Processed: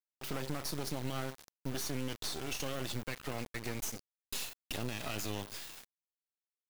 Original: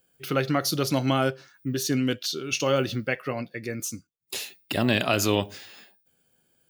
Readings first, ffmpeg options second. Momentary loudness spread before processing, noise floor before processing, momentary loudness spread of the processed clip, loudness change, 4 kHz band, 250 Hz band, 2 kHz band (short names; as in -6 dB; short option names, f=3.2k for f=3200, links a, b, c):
12 LU, -70 dBFS, 6 LU, -13.0 dB, -11.0 dB, -15.0 dB, -13.5 dB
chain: -filter_complex "[0:a]acrossover=split=570|2400[a][b][c];[c]dynaudnorm=f=260:g=9:m=6dB[d];[a][b][d]amix=inputs=3:normalize=0,alimiter=limit=-16.5dB:level=0:latency=1:release=50,acompressor=threshold=-29dB:ratio=6,acrusher=bits=4:dc=4:mix=0:aa=0.000001,volume=25dB,asoftclip=hard,volume=-25dB,volume=-2dB"